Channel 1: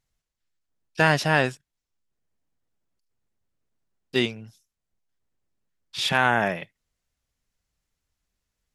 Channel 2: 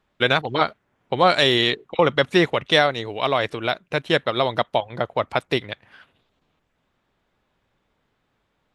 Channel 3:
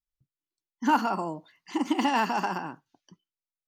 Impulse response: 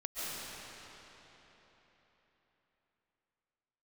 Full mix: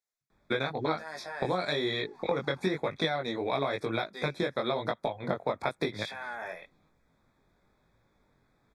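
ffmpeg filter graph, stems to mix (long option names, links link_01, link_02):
-filter_complex "[0:a]highpass=490,alimiter=limit=-18.5dB:level=0:latency=1:release=17,volume=-6.5dB[link_01];[1:a]lowshelf=frequency=450:gain=5,acompressor=threshold=-16dB:ratio=6,adelay=300,volume=1.5dB[link_02];[2:a]asoftclip=type=tanh:threshold=-29.5dB,volume=-10dB,afade=type=in:start_time=2.27:duration=0.43:silence=0.237137[link_03];[link_01][link_02][link_03]amix=inputs=3:normalize=0,acrossover=split=120|5000[link_04][link_05][link_06];[link_04]acompressor=threshold=-54dB:ratio=4[link_07];[link_05]acompressor=threshold=-24dB:ratio=4[link_08];[link_06]acompressor=threshold=-50dB:ratio=4[link_09];[link_07][link_08][link_09]amix=inputs=3:normalize=0,flanger=delay=18.5:depth=3.9:speed=1,asuperstop=centerf=2900:order=12:qfactor=4"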